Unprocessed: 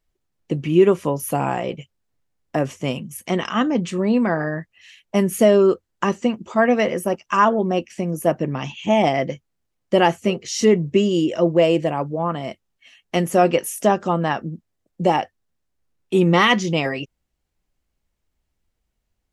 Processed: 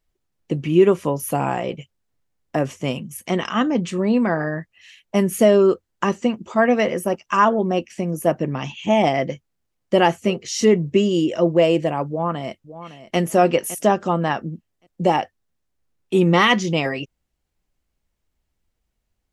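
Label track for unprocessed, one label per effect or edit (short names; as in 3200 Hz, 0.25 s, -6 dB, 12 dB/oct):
12.080000	13.180000	echo throw 0.56 s, feedback 25%, level -14 dB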